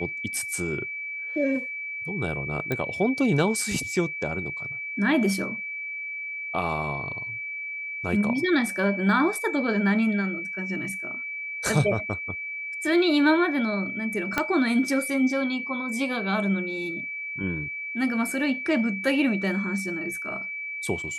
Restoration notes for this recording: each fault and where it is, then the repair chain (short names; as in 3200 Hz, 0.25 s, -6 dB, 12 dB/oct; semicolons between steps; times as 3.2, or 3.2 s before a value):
tone 2300 Hz -31 dBFS
2.72 pop -14 dBFS
14.38 pop -8 dBFS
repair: de-click; notch 2300 Hz, Q 30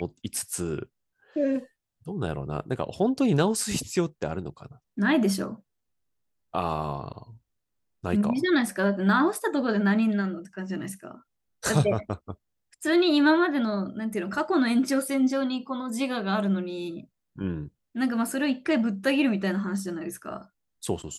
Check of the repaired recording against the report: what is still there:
14.38 pop